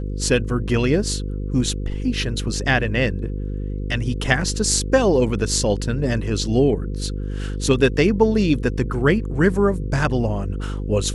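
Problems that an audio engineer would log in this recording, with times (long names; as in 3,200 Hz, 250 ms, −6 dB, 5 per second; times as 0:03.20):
mains buzz 50 Hz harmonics 10 −26 dBFS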